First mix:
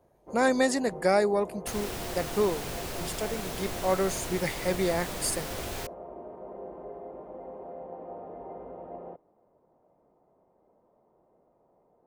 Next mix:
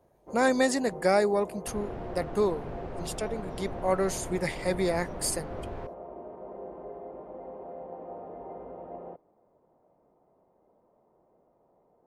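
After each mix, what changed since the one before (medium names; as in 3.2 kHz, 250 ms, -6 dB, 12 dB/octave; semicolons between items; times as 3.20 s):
second sound: add Bessel low-pass 880 Hz, order 2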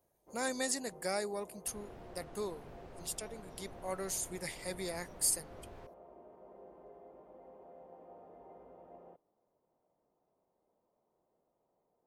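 master: add pre-emphasis filter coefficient 0.8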